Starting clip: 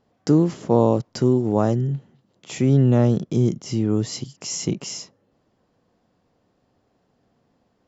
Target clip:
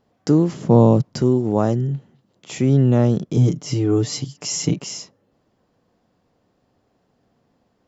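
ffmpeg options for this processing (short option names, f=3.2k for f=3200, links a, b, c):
-filter_complex "[0:a]asettb=1/sr,asplit=3[a][b][c];[a]atrim=end=0.544[d];[b]atrim=start=0.54:end=1.22,asetpts=PTS-STARTPTS,afade=t=in:d=0.004:c=qsin,afade=t=out:st=0.676:d=0.004:c=qsin,equalizer=f=150:w=1.2:g=11[e];[c]atrim=start=1.216[f];[d][e]acrossfade=d=0.004:c1=hsin:c2=qsin[g];[g][f]acrossfade=d=0.004:c1=qsin:c2=hsin,asettb=1/sr,asplit=3[h][i][j];[h]atrim=end=3.364[k];[i]atrim=start=3.36:end=4.79,asetpts=PTS-STARTPTS,afade=t=in:d=0.004:c=qsin,afade=t=out:st=1.426:d=0.004:c=qsin,aecho=1:1:6.8:0.95,atrim=end_sample=63063[l];[j]atrim=start=4.786[m];[k][l]acrossfade=d=0.004:c1=hsin:c2=qsin[n];[n][m]acrossfade=d=0.004:c1=qsin:c2=hsin,volume=1dB"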